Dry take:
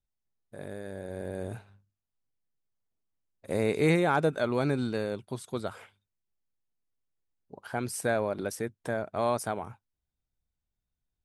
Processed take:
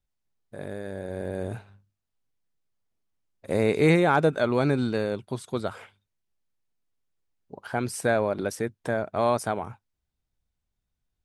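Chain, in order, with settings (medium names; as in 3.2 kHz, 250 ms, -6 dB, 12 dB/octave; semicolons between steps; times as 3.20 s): treble shelf 9.9 kHz -8.5 dB; trim +4.5 dB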